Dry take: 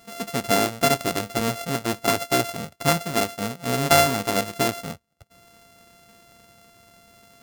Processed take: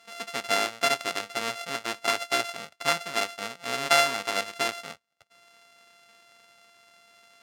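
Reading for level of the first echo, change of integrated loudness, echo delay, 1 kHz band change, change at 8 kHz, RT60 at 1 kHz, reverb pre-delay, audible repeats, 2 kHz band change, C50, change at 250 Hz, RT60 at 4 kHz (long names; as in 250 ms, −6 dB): no echo audible, −4.0 dB, no echo audible, −4.5 dB, −5.5 dB, no reverb audible, no reverb audible, no echo audible, −0.5 dB, no reverb audible, −14.5 dB, no reverb audible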